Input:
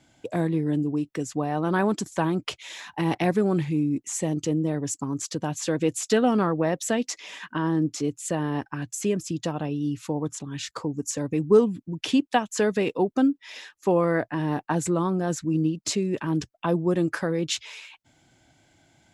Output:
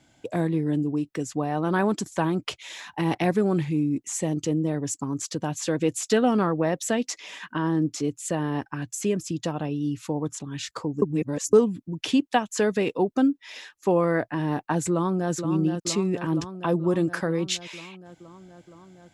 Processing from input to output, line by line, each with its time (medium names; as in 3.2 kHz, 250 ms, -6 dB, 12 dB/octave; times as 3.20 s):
11.02–11.53 s: reverse
14.91–15.32 s: echo throw 470 ms, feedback 75%, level -7.5 dB